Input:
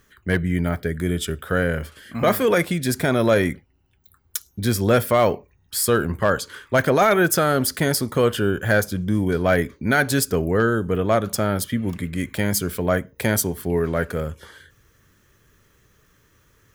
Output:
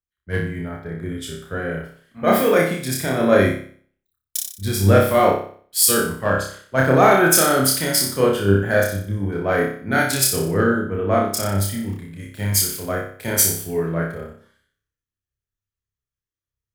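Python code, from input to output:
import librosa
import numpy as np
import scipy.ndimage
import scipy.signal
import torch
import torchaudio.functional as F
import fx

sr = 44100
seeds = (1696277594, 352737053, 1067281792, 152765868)

y = fx.high_shelf(x, sr, hz=8700.0, db=-6.5, at=(0.59, 1.7))
y = fx.room_flutter(y, sr, wall_m=5.2, rt60_s=0.73)
y = fx.band_widen(y, sr, depth_pct=100)
y = F.gain(torch.from_numpy(y), -3.0).numpy()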